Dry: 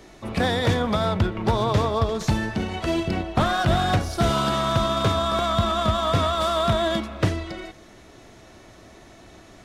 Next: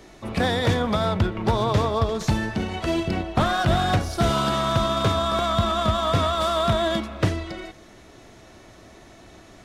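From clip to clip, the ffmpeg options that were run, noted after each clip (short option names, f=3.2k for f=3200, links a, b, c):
-af anull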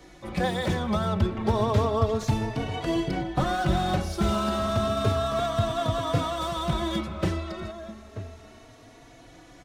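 -filter_complex "[0:a]acrossover=split=830[a][b];[b]asoftclip=type=tanh:threshold=-27.5dB[c];[a][c]amix=inputs=2:normalize=0,asplit=2[d][e];[e]adelay=932.9,volume=-12dB,highshelf=f=4k:g=-21[f];[d][f]amix=inputs=2:normalize=0,asplit=2[g][h];[h]adelay=3.6,afreqshift=0.31[i];[g][i]amix=inputs=2:normalize=1"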